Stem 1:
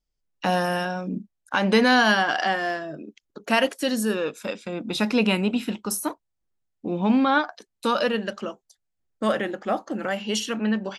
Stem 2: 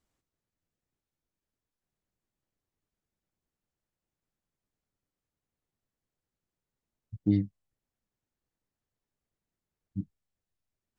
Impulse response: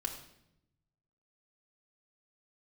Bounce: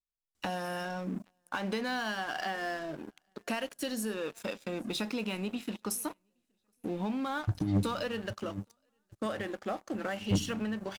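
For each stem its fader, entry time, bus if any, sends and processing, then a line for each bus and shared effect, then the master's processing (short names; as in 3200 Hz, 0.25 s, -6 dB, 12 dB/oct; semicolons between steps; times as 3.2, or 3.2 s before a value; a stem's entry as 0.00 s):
-16.0 dB, 0.00 s, send -19.5 dB, echo send -24 dB, high shelf 6300 Hz +3.5 dB; compressor 8:1, threshold -27 dBFS, peak gain reduction 13 dB
-3.5 dB, 0.35 s, send -12 dB, echo send -14.5 dB, bell 8300 Hz +9 dB 2.5 oct; negative-ratio compressor -30 dBFS, ratio -0.5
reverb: on, RT60 0.80 s, pre-delay 3 ms
echo: feedback echo 0.819 s, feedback 45%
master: sample leveller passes 3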